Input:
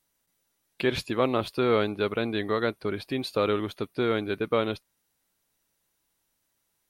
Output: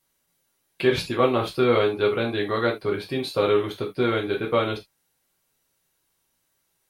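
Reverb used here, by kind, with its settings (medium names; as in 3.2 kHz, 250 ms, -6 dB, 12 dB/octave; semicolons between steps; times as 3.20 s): gated-style reverb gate 100 ms falling, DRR -1.5 dB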